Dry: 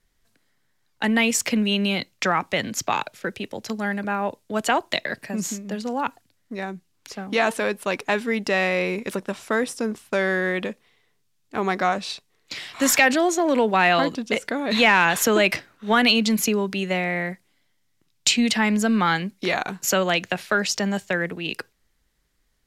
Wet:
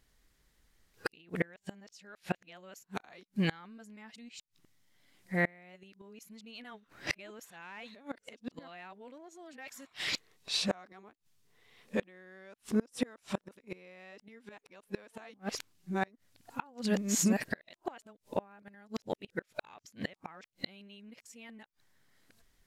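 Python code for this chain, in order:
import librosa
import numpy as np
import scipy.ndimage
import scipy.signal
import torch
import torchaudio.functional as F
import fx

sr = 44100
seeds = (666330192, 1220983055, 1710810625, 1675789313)

y = x[::-1].copy()
y = fx.gate_flip(y, sr, shuts_db=-18.0, range_db=-31)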